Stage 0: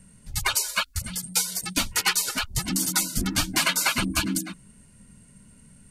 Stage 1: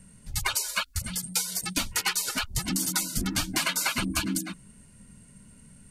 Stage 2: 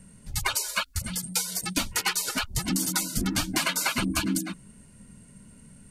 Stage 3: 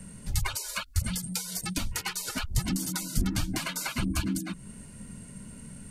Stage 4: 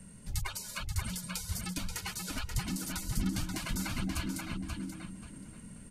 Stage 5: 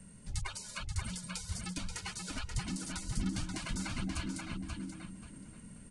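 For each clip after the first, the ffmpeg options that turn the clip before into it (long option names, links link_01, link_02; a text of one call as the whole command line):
ffmpeg -i in.wav -af "acompressor=threshold=-25dB:ratio=2.5" out.wav
ffmpeg -i in.wav -af "equalizer=frequency=390:width=0.43:gain=3.5" out.wav
ffmpeg -i in.wav -filter_complex "[0:a]acrossover=split=140[link_01][link_02];[link_02]acompressor=threshold=-39dB:ratio=4[link_03];[link_01][link_03]amix=inputs=2:normalize=0,volume=6dB" out.wav
ffmpeg -i in.wav -filter_complex "[0:a]asplit=2[link_01][link_02];[link_02]adelay=532,lowpass=frequency=4500:poles=1,volume=-3dB,asplit=2[link_03][link_04];[link_04]adelay=532,lowpass=frequency=4500:poles=1,volume=0.29,asplit=2[link_05][link_06];[link_06]adelay=532,lowpass=frequency=4500:poles=1,volume=0.29,asplit=2[link_07][link_08];[link_08]adelay=532,lowpass=frequency=4500:poles=1,volume=0.29[link_09];[link_01][link_03][link_05][link_07][link_09]amix=inputs=5:normalize=0,volume=-6.5dB" out.wav
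ffmpeg -i in.wav -af "aresample=22050,aresample=44100,volume=-2.5dB" out.wav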